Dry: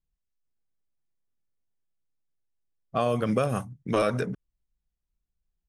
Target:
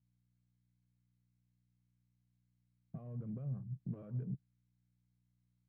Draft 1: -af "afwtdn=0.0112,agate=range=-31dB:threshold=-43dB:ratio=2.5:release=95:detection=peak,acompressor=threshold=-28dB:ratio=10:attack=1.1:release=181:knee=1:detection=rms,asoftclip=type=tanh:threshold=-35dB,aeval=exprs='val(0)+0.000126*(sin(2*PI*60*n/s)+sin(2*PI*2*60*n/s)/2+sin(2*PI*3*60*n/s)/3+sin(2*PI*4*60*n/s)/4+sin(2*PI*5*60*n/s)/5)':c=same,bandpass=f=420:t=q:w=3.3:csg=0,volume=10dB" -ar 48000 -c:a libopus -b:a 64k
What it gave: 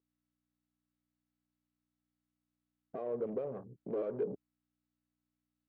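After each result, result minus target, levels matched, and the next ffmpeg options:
125 Hz band -17.0 dB; compressor: peak gain reduction -7 dB
-af "afwtdn=0.0112,agate=range=-31dB:threshold=-43dB:ratio=2.5:release=95:detection=peak,acompressor=threshold=-28dB:ratio=10:attack=1.1:release=181:knee=1:detection=rms,asoftclip=type=tanh:threshold=-35dB,aeval=exprs='val(0)+0.000126*(sin(2*PI*60*n/s)+sin(2*PI*2*60*n/s)/2+sin(2*PI*3*60*n/s)/3+sin(2*PI*4*60*n/s)/4+sin(2*PI*5*60*n/s)/5)':c=same,bandpass=f=140:t=q:w=3.3:csg=0,volume=10dB" -ar 48000 -c:a libopus -b:a 64k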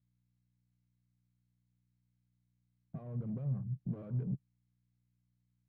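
compressor: peak gain reduction -7 dB
-af "afwtdn=0.0112,agate=range=-31dB:threshold=-43dB:ratio=2.5:release=95:detection=peak,acompressor=threshold=-36dB:ratio=10:attack=1.1:release=181:knee=1:detection=rms,asoftclip=type=tanh:threshold=-35dB,aeval=exprs='val(0)+0.000126*(sin(2*PI*60*n/s)+sin(2*PI*2*60*n/s)/2+sin(2*PI*3*60*n/s)/3+sin(2*PI*4*60*n/s)/4+sin(2*PI*5*60*n/s)/5)':c=same,bandpass=f=140:t=q:w=3.3:csg=0,volume=10dB" -ar 48000 -c:a libopus -b:a 64k

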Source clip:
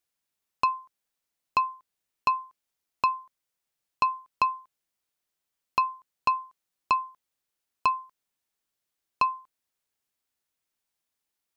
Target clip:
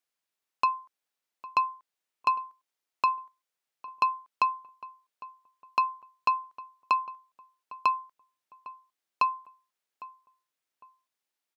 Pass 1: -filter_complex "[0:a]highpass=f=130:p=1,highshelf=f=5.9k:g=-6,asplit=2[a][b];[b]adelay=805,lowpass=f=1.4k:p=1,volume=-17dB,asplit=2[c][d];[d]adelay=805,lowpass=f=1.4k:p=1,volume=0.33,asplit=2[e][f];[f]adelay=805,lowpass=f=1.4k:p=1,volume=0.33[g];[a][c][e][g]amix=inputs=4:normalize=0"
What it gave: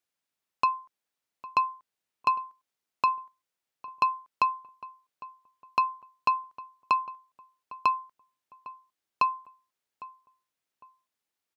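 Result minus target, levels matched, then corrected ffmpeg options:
125 Hz band +6.5 dB
-filter_complex "[0:a]highpass=f=390:p=1,highshelf=f=5.9k:g=-6,asplit=2[a][b];[b]adelay=805,lowpass=f=1.4k:p=1,volume=-17dB,asplit=2[c][d];[d]adelay=805,lowpass=f=1.4k:p=1,volume=0.33,asplit=2[e][f];[f]adelay=805,lowpass=f=1.4k:p=1,volume=0.33[g];[a][c][e][g]amix=inputs=4:normalize=0"

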